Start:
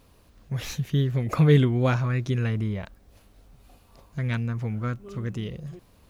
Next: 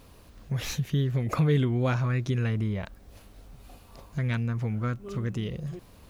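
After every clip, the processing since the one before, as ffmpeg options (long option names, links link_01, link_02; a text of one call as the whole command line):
ffmpeg -i in.wav -filter_complex "[0:a]asplit=2[link_01][link_02];[link_02]alimiter=limit=-17dB:level=0:latency=1,volume=-3dB[link_03];[link_01][link_03]amix=inputs=2:normalize=0,acompressor=threshold=-34dB:ratio=1.5" out.wav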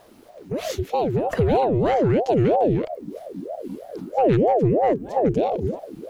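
ffmpeg -i in.wav -af "asubboost=boost=8.5:cutoff=120,aeval=exprs='val(0)*sin(2*PI*450*n/s+450*0.5/3.1*sin(2*PI*3.1*n/s))':channel_layout=same,volume=3.5dB" out.wav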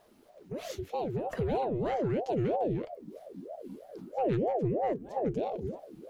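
ffmpeg -i in.wav -af "flanger=delay=4.7:depth=1.1:regen=-70:speed=0.56:shape=triangular,volume=-7dB" out.wav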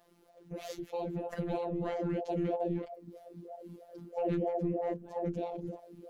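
ffmpeg -i in.wav -af "afftfilt=real='hypot(re,im)*cos(PI*b)':imag='0':win_size=1024:overlap=0.75" out.wav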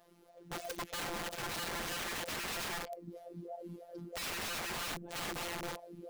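ffmpeg -i in.wav -af "aeval=exprs='(mod(63.1*val(0)+1,2)-1)/63.1':channel_layout=same,volume=1.5dB" out.wav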